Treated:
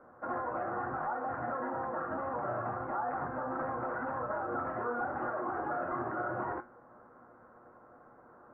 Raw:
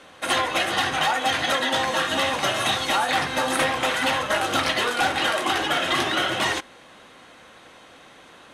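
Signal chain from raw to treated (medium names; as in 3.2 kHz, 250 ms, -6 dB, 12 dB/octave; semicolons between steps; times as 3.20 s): elliptic low-pass 1.4 kHz, stop band 60 dB; peak limiter -21 dBFS, peak gain reduction 7 dB; feedback comb 120 Hz, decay 0.24 s, harmonics all, mix 70%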